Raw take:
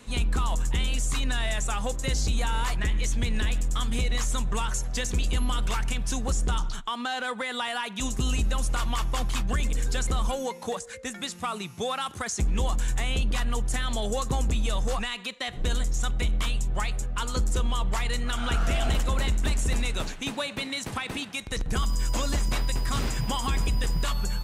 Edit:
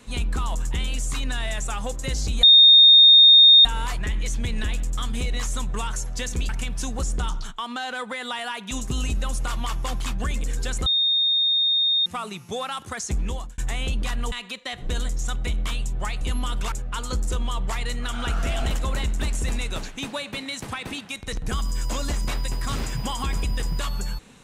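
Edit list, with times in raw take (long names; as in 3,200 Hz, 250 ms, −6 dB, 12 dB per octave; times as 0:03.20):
0:02.43: insert tone 3,680 Hz −8 dBFS 1.22 s
0:05.27–0:05.78: move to 0:16.96
0:10.15–0:11.35: beep over 3,680 Hz −17.5 dBFS
0:12.50–0:12.87: fade out
0:13.61–0:15.07: remove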